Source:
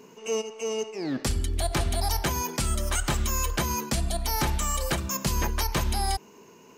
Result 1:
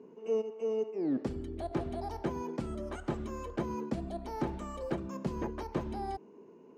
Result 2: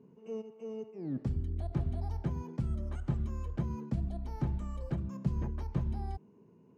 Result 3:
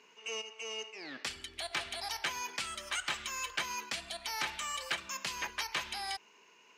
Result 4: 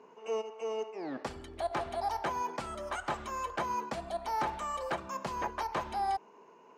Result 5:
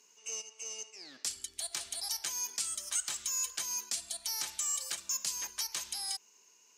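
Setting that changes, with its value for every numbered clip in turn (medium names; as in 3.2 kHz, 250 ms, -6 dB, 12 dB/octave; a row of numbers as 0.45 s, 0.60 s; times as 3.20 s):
band-pass filter, frequency: 330 Hz, 130 Hz, 2.5 kHz, 830 Hz, 6.9 kHz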